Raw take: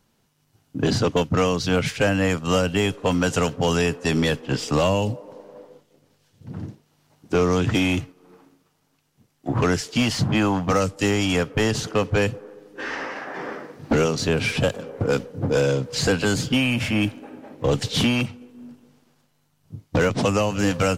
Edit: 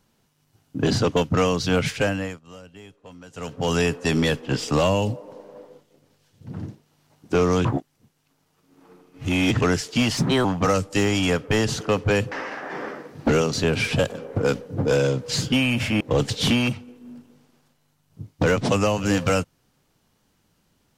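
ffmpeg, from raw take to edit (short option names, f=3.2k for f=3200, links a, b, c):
-filter_complex "[0:a]asplit=10[a][b][c][d][e][f][g][h][i][j];[a]atrim=end=2.4,asetpts=PTS-STARTPTS,afade=t=out:st=1.94:d=0.46:silence=0.0707946[k];[b]atrim=start=2.4:end=3.33,asetpts=PTS-STARTPTS,volume=-23dB[l];[c]atrim=start=3.33:end=7.652,asetpts=PTS-STARTPTS,afade=t=in:d=0.46:silence=0.0707946[m];[d]atrim=start=7.648:end=9.612,asetpts=PTS-STARTPTS,areverse[n];[e]atrim=start=9.608:end=10.174[o];[f]atrim=start=10.17:end=10.51,asetpts=PTS-STARTPTS,asetrate=54243,aresample=44100,atrim=end_sample=12190,asetpts=PTS-STARTPTS[p];[g]atrim=start=10.506:end=12.382[q];[h]atrim=start=12.958:end=16.042[r];[i]atrim=start=16.398:end=17.012[s];[j]atrim=start=17.538[t];[k][l][m]concat=n=3:v=0:a=1[u];[u][n]acrossfade=d=0.004:c1=hsin:c2=hsin[v];[v][o]acrossfade=d=0.004:c1=hsin:c2=hsin[w];[w][p]acrossfade=d=0.004:c1=hsin:c2=hsin[x];[x][q]acrossfade=d=0.004:c1=hsin:c2=hsin[y];[y][r]acrossfade=d=0.004:c1=hsin:c2=hsin[z];[z][s]acrossfade=d=0.004:c1=hsin:c2=hsin[aa];[aa][t]acrossfade=d=0.004:c1=hsin:c2=hsin"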